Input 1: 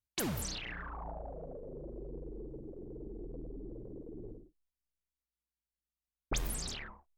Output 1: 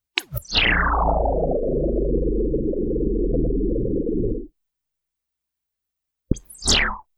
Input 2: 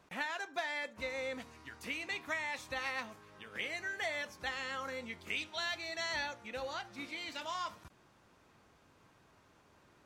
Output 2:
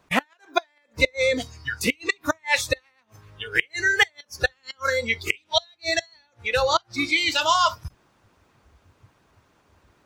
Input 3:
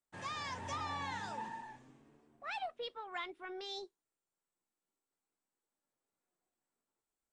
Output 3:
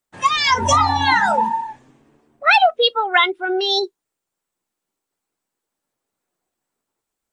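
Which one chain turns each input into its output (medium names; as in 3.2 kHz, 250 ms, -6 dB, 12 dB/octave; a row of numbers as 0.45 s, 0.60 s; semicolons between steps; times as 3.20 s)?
inverted gate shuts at -28 dBFS, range -26 dB; harmonic-percussive split percussive +5 dB; spectral noise reduction 18 dB; peak normalisation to -1.5 dBFS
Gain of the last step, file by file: +22.0 dB, +18.5 dB, +25.0 dB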